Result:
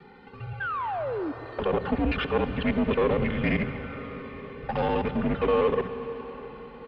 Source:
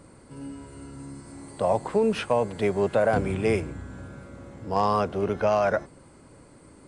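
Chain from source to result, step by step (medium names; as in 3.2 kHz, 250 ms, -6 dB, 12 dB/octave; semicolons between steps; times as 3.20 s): time reversed locally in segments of 66 ms; high-pass 48 Hz; treble shelf 2.2 kHz +9 dB; comb 3.1 ms, depth 90%; in parallel at +2 dB: peak limiter -20.5 dBFS, peak gain reduction 12.5 dB; on the sum: touch-sensitive flanger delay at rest 2.1 ms, full sweep at -12.5 dBFS; painted sound fall, 0.60–1.32 s, 430–1800 Hz -27 dBFS; one-sided clip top -26 dBFS; on a send at -10 dB: reverberation RT60 5.6 s, pre-delay 30 ms; on the sum: mistuned SSB -160 Hz 180–3500 Hz; trim -2.5 dB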